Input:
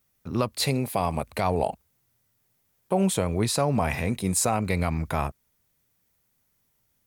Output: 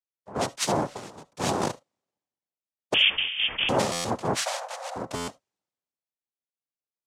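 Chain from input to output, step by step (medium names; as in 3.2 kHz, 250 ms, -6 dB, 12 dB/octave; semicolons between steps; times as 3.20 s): 0.93–1.39 s: compression 4:1, threshold -31 dBFS, peak gain reduction 9.5 dB; noise-vocoded speech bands 2; 2.94–3.69 s: frequency inversion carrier 3.4 kHz; 4.41–4.96 s: rippled Chebyshev high-pass 510 Hz, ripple 3 dB; reverberation, pre-delay 40 ms, DRR 19.5 dB; buffer glitch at 3.92/5.15 s, samples 512, times 10; three bands expanded up and down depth 70%; trim -2 dB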